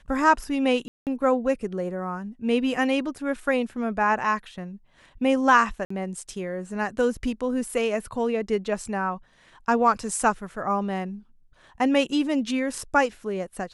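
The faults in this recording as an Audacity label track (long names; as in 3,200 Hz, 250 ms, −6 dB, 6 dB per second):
0.880000	1.070000	drop-out 188 ms
5.850000	5.900000	drop-out 54 ms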